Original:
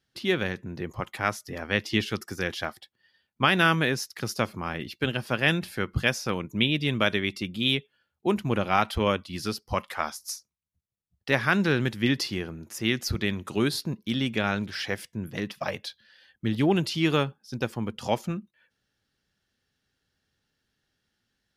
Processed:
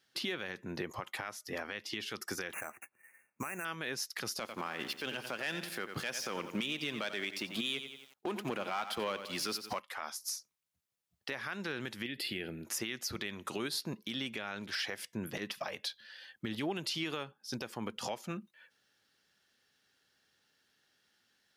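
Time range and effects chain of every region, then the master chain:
2.53–3.65 sample-rate reducer 6800 Hz + brick-wall FIR band-stop 2800–5800 Hz
4.4–9.8 HPF 150 Hz + sample leveller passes 2 + lo-fi delay 89 ms, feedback 35%, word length 8-bit, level -13.5 dB
12.06–12.65 compressor 3:1, threshold -27 dBFS + fixed phaser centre 2600 Hz, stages 4
whole clip: HPF 530 Hz 6 dB/oct; compressor 6:1, threshold -38 dBFS; limiter -31 dBFS; gain +5.5 dB

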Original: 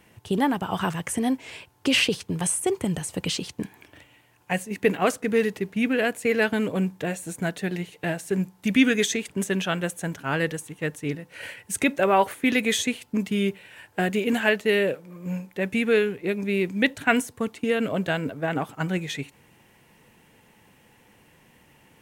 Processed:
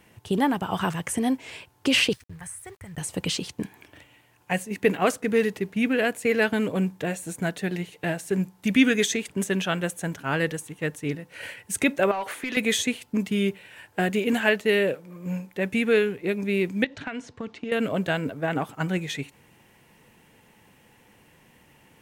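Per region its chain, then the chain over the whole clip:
2.13–2.98 EQ curve 100 Hz 0 dB, 250 Hz -25 dB, 1200 Hz -11 dB, 1900 Hz -3 dB, 2900 Hz -20 dB, 11000 Hz -12 dB + sample gate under -52.5 dBFS
12.11–12.57 overdrive pedal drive 14 dB, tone 5100 Hz, clips at -7.5 dBFS + compressor 4:1, threshold -29 dBFS
16.84–17.72 LPF 5600 Hz 24 dB/oct + compressor 16:1, threshold -28 dBFS
whole clip: dry

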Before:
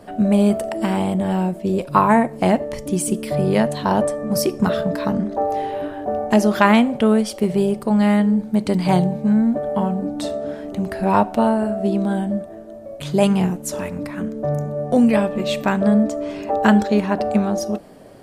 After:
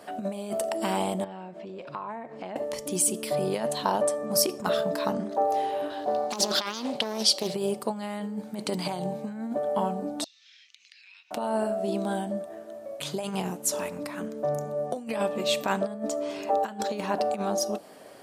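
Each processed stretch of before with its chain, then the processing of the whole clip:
1.24–2.56 compressor, threshold -29 dBFS + air absorption 170 m
5.9–7.54 bell 4300 Hz +15 dB 0.83 oct + Doppler distortion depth 0.49 ms
10.24–11.31 elliptic band-pass 2300–6100 Hz, stop band 60 dB + compressor 5:1, threshold -52 dBFS
whole clip: negative-ratio compressor -18 dBFS, ratio -0.5; dynamic EQ 1900 Hz, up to -7 dB, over -42 dBFS, Q 1.2; HPF 910 Hz 6 dB/oct

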